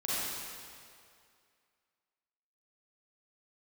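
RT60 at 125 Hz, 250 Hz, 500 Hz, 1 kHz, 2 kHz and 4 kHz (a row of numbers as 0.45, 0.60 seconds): 2.1, 2.1, 2.3, 2.3, 2.1, 2.0 seconds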